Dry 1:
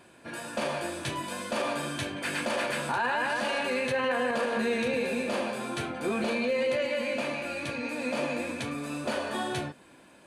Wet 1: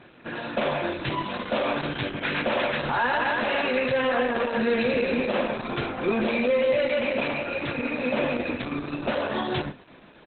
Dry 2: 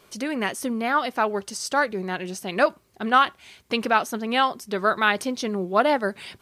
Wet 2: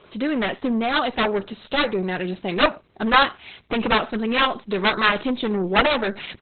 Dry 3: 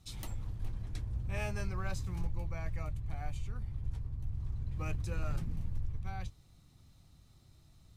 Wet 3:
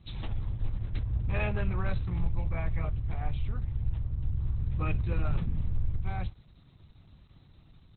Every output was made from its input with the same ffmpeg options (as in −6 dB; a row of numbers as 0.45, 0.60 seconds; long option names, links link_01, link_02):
-af "aecho=1:1:61|122:0.075|0.0232,aeval=exprs='0.531*(cos(1*acos(clip(val(0)/0.531,-1,1)))-cos(1*PI/2))+0.00841*(cos(2*acos(clip(val(0)/0.531,-1,1)))-cos(2*PI/2))+0.00335*(cos(5*acos(clip(val(0)/0.531,-1,1)))-cos(5*PI/2))+0.237*(cos(7*acos(clip(val(0)/0.531,-1,1)))-cos(7*PI/2))+0.0211*(cos(8*acos(clip(val(0)/0.531,-1,1)))-cos(8*PI/2))':channel_layout=same,volume=1dB" -ar 48000 -c:a libopus -b:a 8k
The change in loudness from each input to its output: +4.5, +2.5, +6.5 LU